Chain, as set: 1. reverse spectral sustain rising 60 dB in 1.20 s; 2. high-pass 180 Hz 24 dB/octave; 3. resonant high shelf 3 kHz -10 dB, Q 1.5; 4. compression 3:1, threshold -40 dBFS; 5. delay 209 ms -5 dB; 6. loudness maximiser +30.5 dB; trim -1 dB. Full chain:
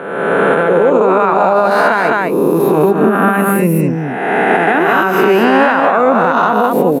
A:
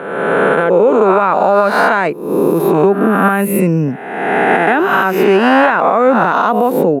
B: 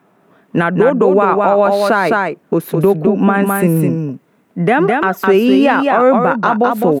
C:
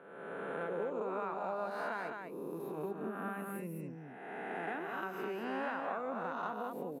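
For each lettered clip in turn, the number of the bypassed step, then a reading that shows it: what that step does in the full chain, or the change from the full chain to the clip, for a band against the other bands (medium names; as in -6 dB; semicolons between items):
5, momentary loudness spread change +2 LU; 1, 2 kHz band -3.0 dB; 6, crest factor change +7.0 dB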